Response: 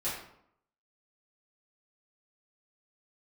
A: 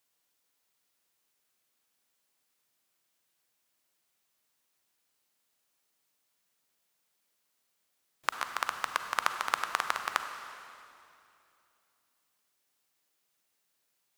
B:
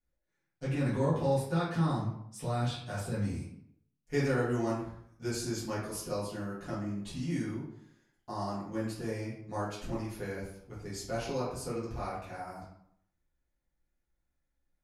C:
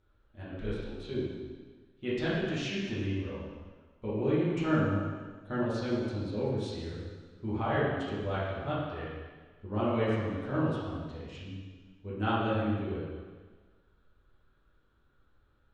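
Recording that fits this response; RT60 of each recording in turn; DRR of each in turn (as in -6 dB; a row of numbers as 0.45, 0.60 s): B; 2.7, 0.70, 1.5 s; 7.0, -10.5, -10.0 dB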